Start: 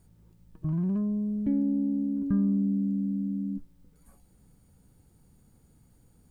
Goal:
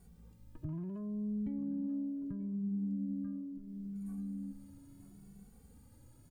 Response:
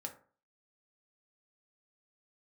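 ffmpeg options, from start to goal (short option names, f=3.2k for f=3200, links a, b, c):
-filter_complex "[0:a]asplit=2[a][b];[b]aecho=0:1:937|1874:0.299|0.0478[c];[a][c]amix=inputs=2:normalize=0,alimiter=limit=-22dB:level=0:latency=1:release=294,acompressor=threshold=-42dB:ratio=2.5,asplit=2[d][e];[e]adelay=2.2,afreqshift=0.73[f];[d][f]amix=inputs=2:normalize=1,volume=3.5dB"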